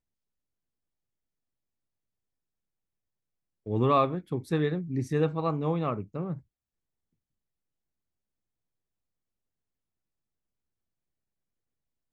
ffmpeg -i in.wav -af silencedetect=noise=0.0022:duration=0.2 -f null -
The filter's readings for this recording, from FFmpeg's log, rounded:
silence_start: 0.00
silence_end: 3.66 | silence_duration: 3.66
silence_start: 6.41
silence_end: 12.13 | silence_duration: 5.72